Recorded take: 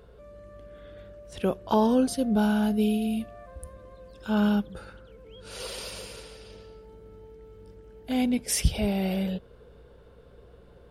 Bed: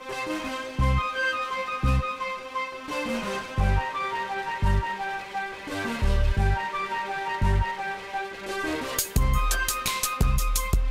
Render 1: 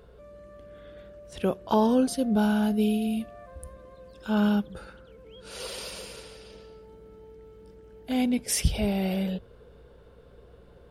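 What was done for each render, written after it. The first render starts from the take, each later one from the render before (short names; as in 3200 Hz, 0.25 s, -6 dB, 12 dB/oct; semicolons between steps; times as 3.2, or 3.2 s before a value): de-hum 50 Hz, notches 2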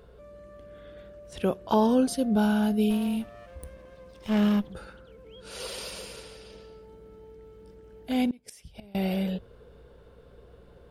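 2.9–4.73 minimum comb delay 0.34 ms; 8.28–8.95 flipped gate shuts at -21 dBFS, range -25 dB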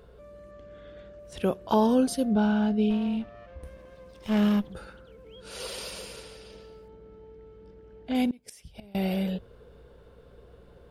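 0.51–1.19 steep low-pass 7700 Hz; 2.33–3.64 air absorption 140 m; 6.88–8.15 air absorption 130 m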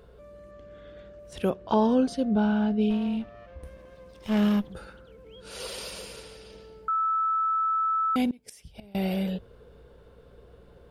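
1.5–2.81 air absorption 96 m; 6.88–8.16 bleep 1310 Hz -22.5 dBFS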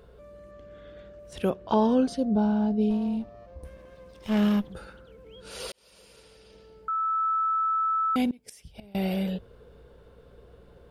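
2.18–3.65 band shelf 2100 Hz -9 dB; 5.72–7.27 fade in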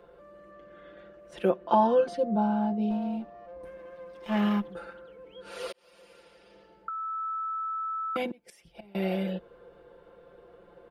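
three-band isolator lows -15 dB, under 250 Hz, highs -12 dB, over 2700 Hz; comb 5.8 ms, depth 93%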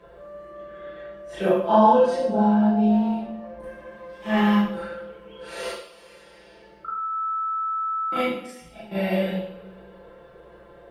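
reverse echo 36 ms -5.5 dB; two-slope reverb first 0.62 s, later 2.5 s, from -25 dB, DRR -6 dB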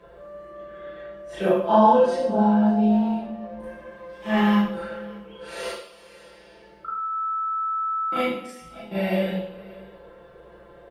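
echo 0.581 s -22 dB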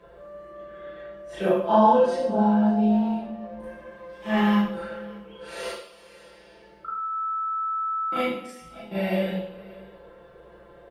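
gain -1.5 dB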